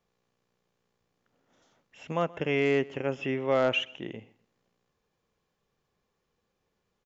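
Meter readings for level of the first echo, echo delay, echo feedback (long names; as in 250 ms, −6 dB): −22.5 dB, 126 ms, 30%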